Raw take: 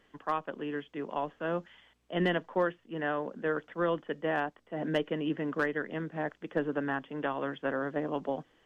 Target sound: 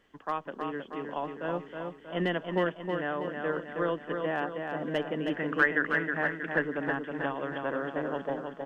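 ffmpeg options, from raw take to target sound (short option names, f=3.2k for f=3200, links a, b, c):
-filter_complex "[0:a]asettb=1/sr,asplit=3[a][b][c];[a]atrim=end=5.304[d];[b]atrim=start=5.3:end=6.62,asetpts=PTS-STARTPTS,afade=t=in:d=0.004:c=qsin,afade=t=out:st=1.316:d=0.004:c=qsin,equalizer=f=1.7k:t=o:w=1.1:g=11[e];[c]atrim=start=6.616[f];[d][e]acrossfade=d=0.004:c1=hsin:c2=qsin[g];[g][f]acrossfade=d=0.004:c1=qsin:c2=hsin,aecho=1:1:318|636|954|1272|1590|1908:0.562|0.287|0.146|0.0746|0.038|0.0194,volume=-1dB"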